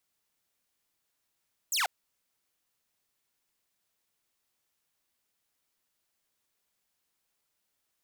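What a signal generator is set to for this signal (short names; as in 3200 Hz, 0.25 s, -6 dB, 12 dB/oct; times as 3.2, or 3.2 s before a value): laser zap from 8500 Hz, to 650 Hz, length 0.14 s saw, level -23 dB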